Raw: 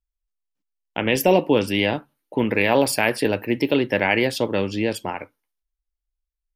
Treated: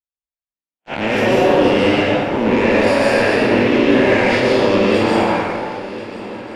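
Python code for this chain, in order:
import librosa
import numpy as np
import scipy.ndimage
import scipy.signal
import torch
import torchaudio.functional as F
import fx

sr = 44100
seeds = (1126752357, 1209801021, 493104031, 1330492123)

p1 = fx.spec_blur(x, sr, span_ms=115.0)
p2 = fx.highpass(p1, sr, hz=120.0, slope=6)
p3 = fx.tilt_eq(p2, sr, slope=2.0)
p4 = fx.over_compress(p3, sr, threshold_db=-34.0, ratio=-1.0)
p5 = p3 + F.gain(torch.from_numpy(p4), -2.0).numpy()
p6 = fx.leveller(p5, sr, passes=5)
p7 = fx.spacing_loss(p6, sr, db_at_10k=24)
p8 = p7 + fx.echo_swing(p7, sr, ms=1385, ratio=3, feedback_pct=47, wet_db=-17.0, dry=0)
p9 = fx.rev_plate(p8, sr, seeds[0], rt60_s=1.8, hf_ratio=0.7, predelay_ms=105, drr_db=-5.0)
y = F.gain(torch.from_numpy(p9), -7.5).numpy()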